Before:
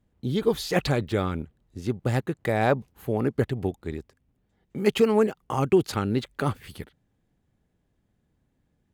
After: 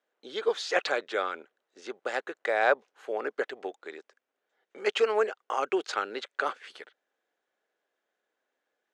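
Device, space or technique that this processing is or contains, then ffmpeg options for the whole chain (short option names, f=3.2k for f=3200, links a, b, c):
phone speaker on a table: -af "highpass=f=470:w=0.5412,highpass=f=470:w=1.3066,equalizer=f=890:t=q:w=4:g=-3,equalizer=f=1.5k:t=q:w=4:g=6,equalizer=f=4.7k:t=q:w=4:g=-3,lowpass=f=6.8k:w=0.5412,lowpass=f=6.8k:w=1.3066"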